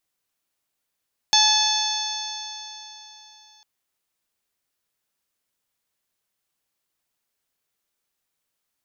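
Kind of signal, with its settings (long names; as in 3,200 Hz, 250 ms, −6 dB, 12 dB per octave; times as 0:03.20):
stiff-string partials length 2.30 s, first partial 853 Hz, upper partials −7.5/−10.5/3/1.5/−0.5/0 dB, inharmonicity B 0.0026, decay 3.51 s, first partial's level −20.5 dB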